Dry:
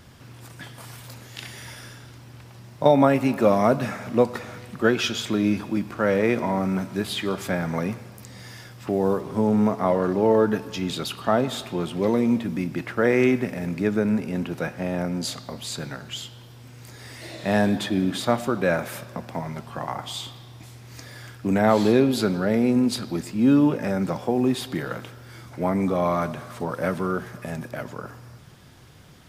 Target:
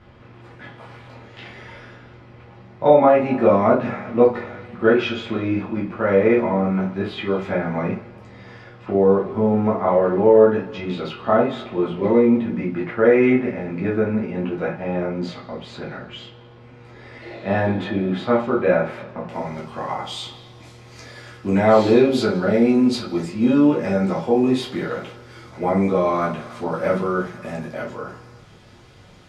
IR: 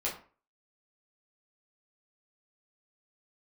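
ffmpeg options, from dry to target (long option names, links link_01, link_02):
-filter_complex "[0:a]asetnsamples=nb_out_samples=441:pad=0,asendcmd='19.29 lowpass f 7300',lowpass=2400[link_01];[1:a]atrim=start_sample=2205,afade=type=out:start_time=0.15:duration=0.01,atrim=end_sample=7056[link_02];[link_01][link_02]afir=irnorm=-1:irlink=0,volume=-1dB"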